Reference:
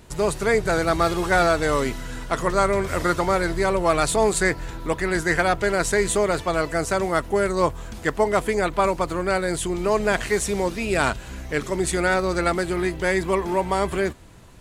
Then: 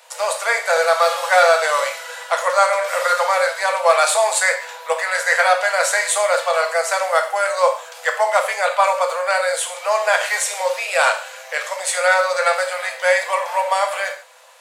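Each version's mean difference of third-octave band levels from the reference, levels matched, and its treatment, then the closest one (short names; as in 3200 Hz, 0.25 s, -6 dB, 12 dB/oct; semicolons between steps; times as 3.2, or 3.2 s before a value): 12.5 dB: Chebyshev high-pass 500 Hz, order 8; non-linear reverb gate 0.18 s falling, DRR 3 dB; gain +5.5 dB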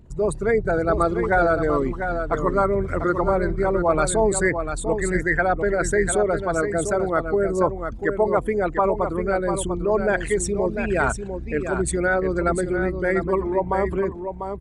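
9.5 dB: formant sharpening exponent 2; echo 0.696 s -7.5 dB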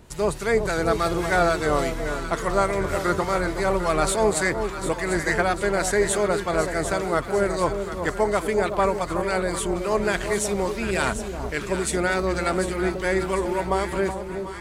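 3.5 dB: harmonic tremolo 3.5 Hz, depth 50%, crossover 1500 Hz; on a send: echo with dull and thin repeats by turns 0.373 s, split 1000 Hz, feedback 73%, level -7 dB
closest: third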